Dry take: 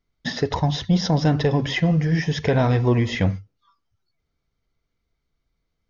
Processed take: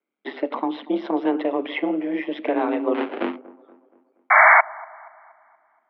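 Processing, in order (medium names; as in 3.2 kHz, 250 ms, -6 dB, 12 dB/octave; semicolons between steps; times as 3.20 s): band-stop 1.7 kHz, Q 7.7; 2.94–3.36 s: sample-rate reducer 1 kHz, jitter 20%; ring modulator 71 Hz; 4.30–4.61 s: painted sound noise 510–2200 Hz -13 dBFS; on a send: feedback echo behind a low-pass 237 ms, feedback 47%, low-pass 1 kHz, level -19.5 dB; on the sum: mistuned SSB +86 Hz 180–3000 Hz; trim +1 dB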